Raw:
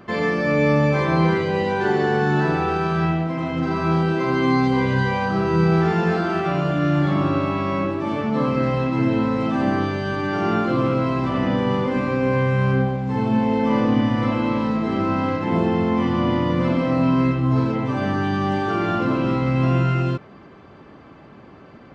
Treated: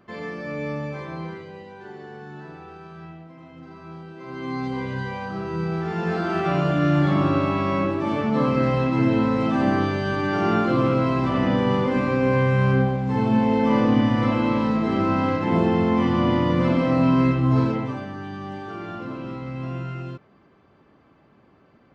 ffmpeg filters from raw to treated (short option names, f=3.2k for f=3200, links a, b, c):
-af "volume=8.5dB,afade=t=out:st=0.68:d=0.99:silence=0.375837,afade=t=in:st=4.15:d=0.52:silence=0.281838,afade=t=in:st=5.85:d=0.69:silence=0.354813,afade=t=out:st=17.64:d=0.42:silence=0.251189"